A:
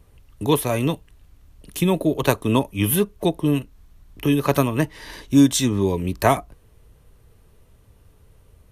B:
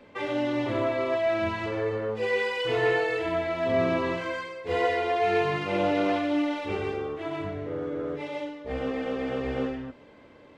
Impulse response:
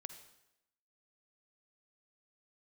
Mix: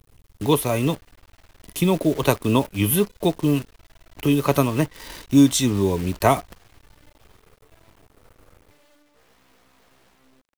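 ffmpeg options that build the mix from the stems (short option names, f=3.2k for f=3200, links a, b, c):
-filter_complex "[0:a]bandreject=f=1.7k:w=8.2,volume=0dB[a];[1:a]asoftclip=type=hard:threshold=-26.5dB,bandreject=f=770:w=12,aeval=exprs='0.0224*(abs(mod(val(0)/0.0224+3,4)-2)-1)':c=same,adelay=500,volume=-16.5dB[b];[a][b]amix=inputs=2:normalize=0,acrusher=bits=7:dc=4:mix=0:aa=0.000001"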